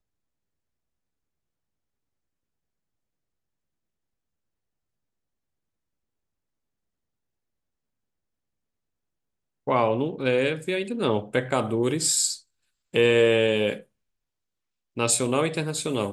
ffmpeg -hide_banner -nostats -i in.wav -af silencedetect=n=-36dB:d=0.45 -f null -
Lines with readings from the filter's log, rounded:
silence_start: 0.00
silence_end: 9.67 | silence_duration: 9.67
silence_start: 12.37
silence_end: 12.94 | silence_duration: 0.57
silence_start: 13.80
silence_end: 14.97 | silence_duration: 1.17